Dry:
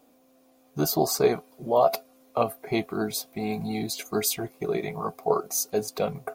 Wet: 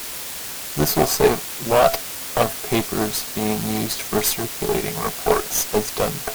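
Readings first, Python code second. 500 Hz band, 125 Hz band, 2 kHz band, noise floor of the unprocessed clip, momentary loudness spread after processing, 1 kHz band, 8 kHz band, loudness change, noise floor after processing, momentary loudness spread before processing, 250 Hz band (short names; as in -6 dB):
+5.0 dB, +7.5 dB, +10.5 dB, -61 dBFS, 8 LU, +6.0 dB, +8.0 dB, +6.0 dB, -31 dBFS, 9 LU, +5.5 dB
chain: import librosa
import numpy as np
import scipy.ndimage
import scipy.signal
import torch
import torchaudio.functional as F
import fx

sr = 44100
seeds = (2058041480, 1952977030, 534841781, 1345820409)

y = fx.quant_dither(x, sr, seeds[0], bits=6, dither='triangular')
y = fx.cheby_harmonics(y, sr, harmonics=(8,), levels_db=(-18,), full_scale_db=-7.0)
y = y * librosa.db_to_amplitude(5.0)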